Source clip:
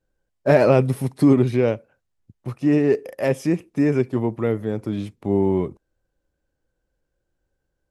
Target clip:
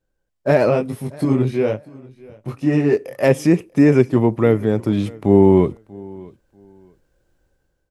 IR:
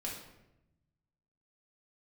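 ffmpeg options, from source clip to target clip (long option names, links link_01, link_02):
-filter_complex "[0:a]dynaudnorm=framelen=430:gausssize=5:maxgain=15dB,asplit=3[link_01][link_02][link_03];[link_01]afade=type=out:start_time=0.69:duration=0.02[link_04];[link_02]flanger=delay=19:depth=4.3:speed=1.1,afade=type=in:start_time=0.69:duration=0.02,afade=type=out:start_time=3.22:duration=0.02[link_05];[link_03]afade=type=in:start_time=3.22:duration=0.02[link_06];[link_04][link_05][link_06]amix=inputs=3:normalize=0,aecho=1:1:639|1278:0.0708|0.0156"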